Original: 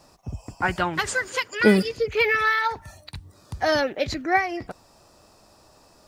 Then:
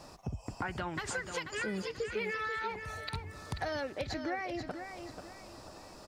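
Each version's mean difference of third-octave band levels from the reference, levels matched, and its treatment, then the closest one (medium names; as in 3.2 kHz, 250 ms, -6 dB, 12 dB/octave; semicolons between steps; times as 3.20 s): 8.5 dB: treble shelf 8.3 kHz -7 dB; peak limiter -15.5 dBFS, peak gain reduction 11 dB; compression 6:1, threshold -39 dBFS, peak gain reduction 17.5 dB; feedback delay 487 ms, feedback 37%, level -8 dB; trim +3.5 dB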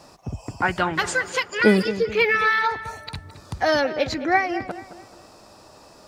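4.0 dB: bass shelf 69 Hz -10 dB; in parallel at +2 dB: compression, threshold -35 dBFS, peak gain reduction 21 dB; on the sum: treble shelf 9 kHz -7 dB; filtered feedback delay 216 ms, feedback 41%, low-pass 2.7 kHz, level -12.5 dB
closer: second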